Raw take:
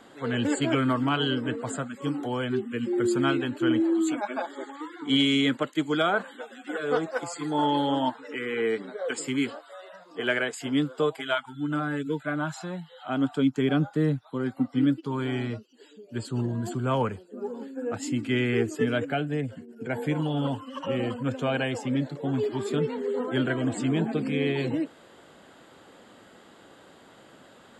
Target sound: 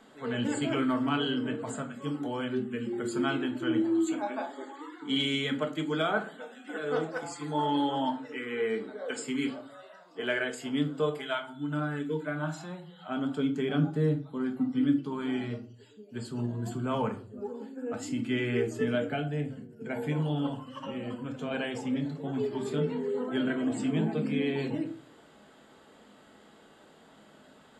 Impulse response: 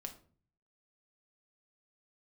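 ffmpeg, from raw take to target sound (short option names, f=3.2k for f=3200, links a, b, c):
-filter_complex "[0:a]asettb=1/sr,asplit=3[a][b][c];[a]atrim=end=20.464[d];[b]atrim=start=20.46:end=21.51,asetpts=PTS-STARTPTS,afade=t=in:d=0.004:c=qsin,afade=t=out:st=1.046:d=0.004:c=qsin,acompressor=threshold=-28dB:ratio=6[e];[c]atrim=start=21.506[f];[d][e]acrossfade=d=0.004:c1=hsin:c2=qsin[g];[g][f]acrossfade=d=0.004:c1=qsin:c2=hsin[h];[1:a]atrim=start_sample=2205,asetrate=48510,aresample=44100[i];[h][i]afir=irnorm=-1:irlink=0"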